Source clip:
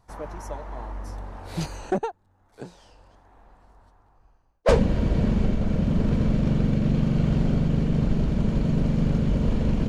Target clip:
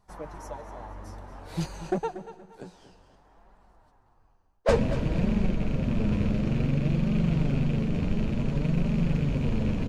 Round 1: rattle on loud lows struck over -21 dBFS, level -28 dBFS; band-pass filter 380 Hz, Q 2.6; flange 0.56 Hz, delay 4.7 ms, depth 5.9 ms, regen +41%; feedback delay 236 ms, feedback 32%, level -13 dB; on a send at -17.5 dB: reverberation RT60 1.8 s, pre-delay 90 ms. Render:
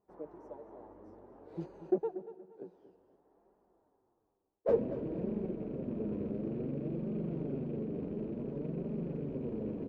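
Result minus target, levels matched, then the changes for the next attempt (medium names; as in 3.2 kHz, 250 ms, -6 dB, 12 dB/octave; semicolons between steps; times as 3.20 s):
500 Hz band +6.0 dB
remove: band-pass filter 380 Hz, Q 2.6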